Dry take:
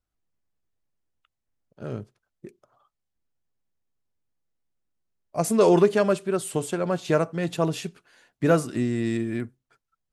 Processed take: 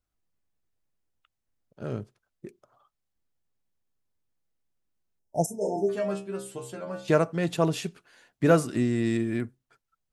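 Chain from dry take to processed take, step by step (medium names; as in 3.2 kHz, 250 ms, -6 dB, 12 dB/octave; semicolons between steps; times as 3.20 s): 5.46–7.08 s: inharmonic resonator 64 Hz, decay 0.45 s, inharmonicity 0.002; 5.19–5.89 s: spectral selection erased 930–5100 Hz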